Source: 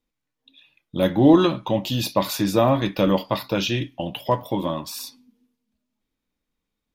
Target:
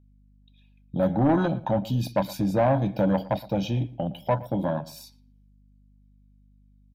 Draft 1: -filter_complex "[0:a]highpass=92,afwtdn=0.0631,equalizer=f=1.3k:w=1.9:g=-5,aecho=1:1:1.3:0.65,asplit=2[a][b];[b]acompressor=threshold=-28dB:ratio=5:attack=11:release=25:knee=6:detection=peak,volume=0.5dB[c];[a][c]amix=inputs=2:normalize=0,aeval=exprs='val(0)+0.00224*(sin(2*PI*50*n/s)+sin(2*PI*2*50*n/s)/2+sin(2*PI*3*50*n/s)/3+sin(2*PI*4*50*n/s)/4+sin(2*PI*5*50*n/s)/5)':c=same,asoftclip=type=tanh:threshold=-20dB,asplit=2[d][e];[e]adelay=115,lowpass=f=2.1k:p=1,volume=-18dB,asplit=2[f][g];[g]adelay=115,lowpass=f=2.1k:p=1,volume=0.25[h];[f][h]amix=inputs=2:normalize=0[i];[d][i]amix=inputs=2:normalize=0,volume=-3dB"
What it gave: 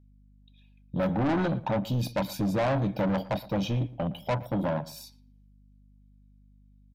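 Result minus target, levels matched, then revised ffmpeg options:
soft clip: distortion +8 dB; compressor: peak gain reduction -5 dB
-filter_complex "[0:a]highpass=92,afwtdn=0.0631,equalizer=f=1.3k:w=1.9:g=-5,aecho=1:1:1.3:0.65,asplit=2[a][b];[b]acompressor=threshold=-34.5dB:ratio=5:attack=11:release=25:knee=6:detection=peak,volume=0.5dB[c];[a][c]amix=inputs=2:normalize=0,aeval=exprs='val(0)+0.00224*(sin(2*PI*50*n/s)+sin(2*PI*2*50*n/s)/2+sin(2*PI*3*50*n/s)/3+sin(2*PI*4*50*n/s)/4+sin(2*PI*5*50*n/s)/5)':c=same,asoftclip=type=tanh:threshold=-11dB,asplit=2[d][e];[e]adelay=115,lowpass=f=2.1k:p=1,volume=-18dB,asplit=2[f][g];[g]adelay=115,lowpass=f=2.1k:p=1,volume=0.25[h];[f][h]amix=inputs=2:normalize=0[i];[d][i]amix=inputs=2:normalize=0,volume=-3dB"

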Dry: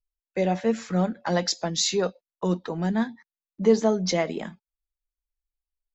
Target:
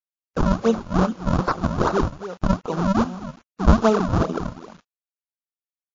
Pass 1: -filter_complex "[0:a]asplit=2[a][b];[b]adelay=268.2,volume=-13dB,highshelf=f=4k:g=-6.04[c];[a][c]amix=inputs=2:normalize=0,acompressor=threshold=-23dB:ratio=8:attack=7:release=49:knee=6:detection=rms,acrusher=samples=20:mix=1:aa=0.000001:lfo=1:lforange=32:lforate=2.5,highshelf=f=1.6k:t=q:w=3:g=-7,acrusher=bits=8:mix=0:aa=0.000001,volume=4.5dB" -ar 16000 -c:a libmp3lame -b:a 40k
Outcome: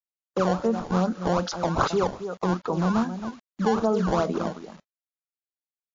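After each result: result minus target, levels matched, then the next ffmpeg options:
compressor: peak gain reduction +10.5 dB; decimation with a swept rate: distortion -12 dB
-filter_complex "[0:a]asplit=2[a][b];[b]adelay=268.2,volume=-13dB,highshelf=f=4k:g=-6.04[c];[a][c]amix=inputs=2:normalize=0,acrusher=samples=20:mix=1:aa=0.000001:lfo=1:lforange=32:lforate=2.5,highshelf=f=1.6k:t=q:w=3:g=-7,acrusher=bits=8:mix=0:aa=0.000001,volume=4.5dB" -ar 16000 -c:a libmp3lame -b:a 40k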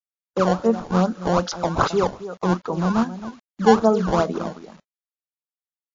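decimation with a swept rate: distortion -11 dB
-filter_complex "[0:a]asplit=2[a][b];[b]adelay=268.2,volume=-13dB,highshelf=f=4k:g=-6.04[c];[a][c]amix=inputs=2:normalize=0,acrusher=samples=64:mix=1:aa=0.000001:lfo=1:lforange=102:lforate=2.5,highshelf=f=1.6k:t=q:w=3:g=-7,acrusher=bits=8:mix=0:aa=0.000001,volume=4.5dB" -ar 16000 -c:a libmp3lame -b:a 40k

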